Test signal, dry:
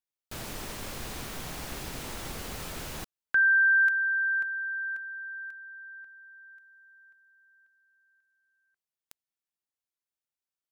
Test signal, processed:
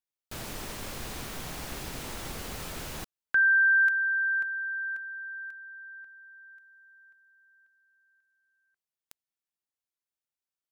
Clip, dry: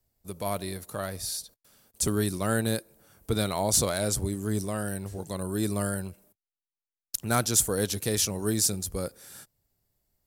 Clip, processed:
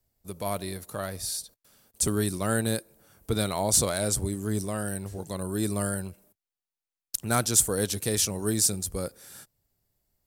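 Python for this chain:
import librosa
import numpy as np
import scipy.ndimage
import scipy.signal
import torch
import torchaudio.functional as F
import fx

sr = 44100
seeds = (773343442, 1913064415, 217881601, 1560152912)

y = fx.dynamic_eq(x, sr, hz=8500.0, q=4.9, threshold_db=-46.0, ratio=4.0, max_db=5)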